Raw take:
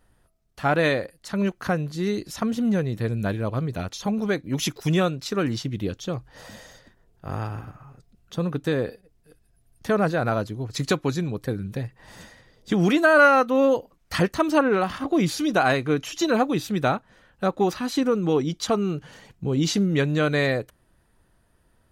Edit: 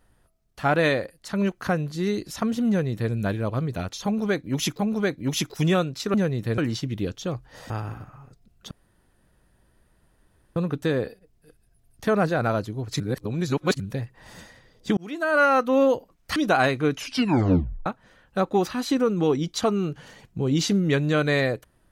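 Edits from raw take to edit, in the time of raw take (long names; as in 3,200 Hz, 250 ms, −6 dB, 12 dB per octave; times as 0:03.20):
0:02.68–0:03.12: duplicate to 0:05.40
0:04.05–0:04.79: repeat, 2 plays
0:06.52–0:07.37: remove
0:08.38: splice in room tone 1.85 s
0:10.82–0:11.62: reverse
0:12.79–0:13.49: fade in
0:14.18–0:15.42: remove
0:16.03: tape stop 0.89 s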